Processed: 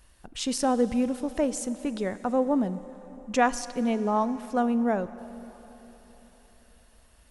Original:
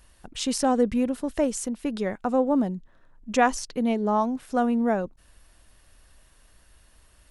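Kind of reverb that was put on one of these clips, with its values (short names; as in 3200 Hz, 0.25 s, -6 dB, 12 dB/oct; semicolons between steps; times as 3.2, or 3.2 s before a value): plate-style reverb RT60 4.3 s, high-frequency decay 0.8×, DRR 14 dB; gain -2 dB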